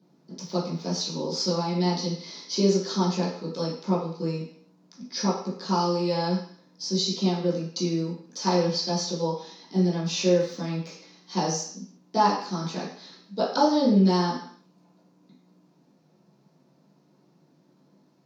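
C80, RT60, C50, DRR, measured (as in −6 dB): 8.0 dB, 0.55 s, 4.5 dB, −11.0 dB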